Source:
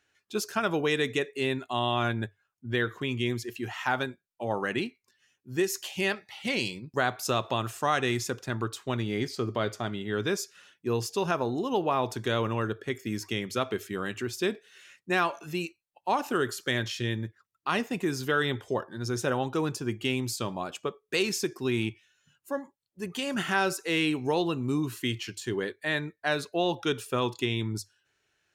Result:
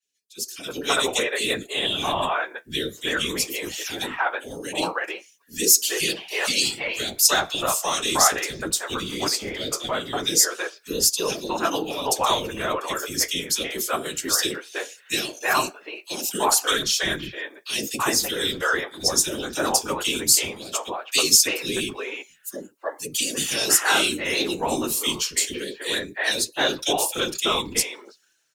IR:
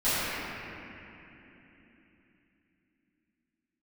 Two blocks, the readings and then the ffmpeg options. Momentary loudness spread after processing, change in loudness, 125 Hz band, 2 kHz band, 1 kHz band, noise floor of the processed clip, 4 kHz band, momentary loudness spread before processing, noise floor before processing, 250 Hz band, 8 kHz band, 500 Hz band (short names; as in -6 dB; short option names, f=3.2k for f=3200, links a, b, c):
12 LU, +7.5 dB, -7.0 dB, +5.5 dB, +5.0 dB, -55 dBFS, +12.0 dB, 8 LU, -80 dBFS, -0.5 dB, +19.5 dB, +2.0 dB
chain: -filter_complex "[0:a]afftfilt=real='hypot(re,im)*cos(2*PI*random(0))':imag='hypot(re,im)*sin(2*PI*random(1))':win_size=512:overlap=0.75,bass=f=250:g=-13,treble=f=4k:g=11,acrossover=split=450|2400[a][b][c];[a]adelay=30[d];[b]adelay=330[e];[d][e][c]amix=inputs=3:normalize=0,flanger=delay=3.9:depth=9.8:regen=-48:speed=0.18:shape=triangular,dynaudnorm=f=160:g=9:m=15dB,adynamicequalizer=threshold=0.0112:dfrequency=2800:dqfactor=0.7:tfrequency=2800:tqfactor=0.7:attack=5:release=100:ratio=0.375:range=2:mode=boostabove:tftype=highshelf,volume=1dB"